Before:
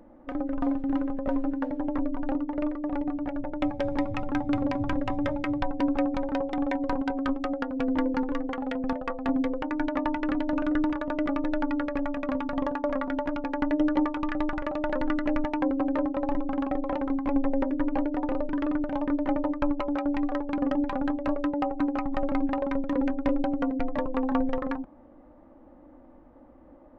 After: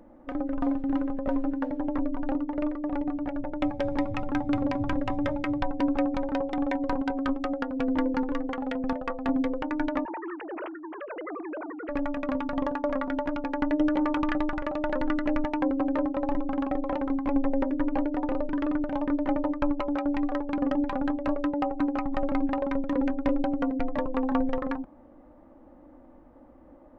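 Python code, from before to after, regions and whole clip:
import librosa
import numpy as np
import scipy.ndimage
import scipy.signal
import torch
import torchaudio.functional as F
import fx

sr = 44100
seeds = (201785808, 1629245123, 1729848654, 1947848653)

y = fx.chain(x, sr, fx.sine_speech(),
    fx.highpass(hz=800.0, slope=6),
    fx.over_compress(threshold_db=-36.0, ratio=-1.0), at=(10.05, 11.89))
y = fx.chain(y, sr, fx.tube_stage(drive_db=17.0, bias=0.45),
    fx.env_flatten(amount_pct=70), at=(13.88, 14.38))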